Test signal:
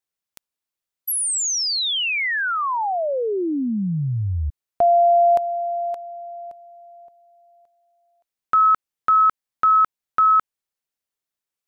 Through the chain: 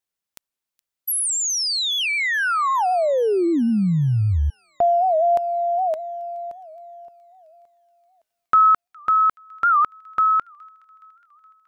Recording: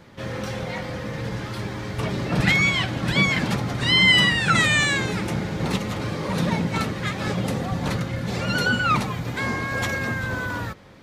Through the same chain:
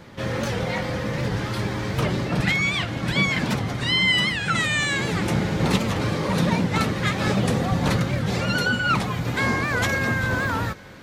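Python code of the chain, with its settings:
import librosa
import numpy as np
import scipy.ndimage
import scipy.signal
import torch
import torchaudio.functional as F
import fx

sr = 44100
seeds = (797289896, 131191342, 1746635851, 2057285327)

y = fx.rider(x, sr, range_db=4, speed_s=0.5)
y = fx.echo_wet_highpass(y, sr, ms=419, feedback_pct=64, hz=2100.0, wet_db=-21)
y = fx.record_warp(y, sr, rpm=78.0, depth_cents=160.0)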